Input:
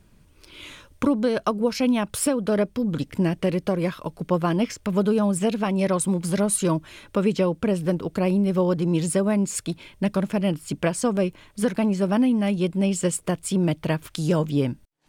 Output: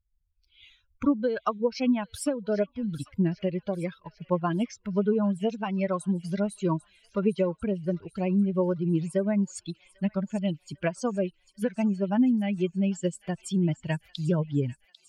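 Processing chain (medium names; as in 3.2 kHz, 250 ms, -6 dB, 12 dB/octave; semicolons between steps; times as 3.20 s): expander on every frequency bin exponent 2; low-pass that closes with the level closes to 2.1 kHz, closed at -20 dBFS; on a send: feedback echo behind a high-pass 796 ms, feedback 53%, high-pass 2.2 kHz, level -14 dB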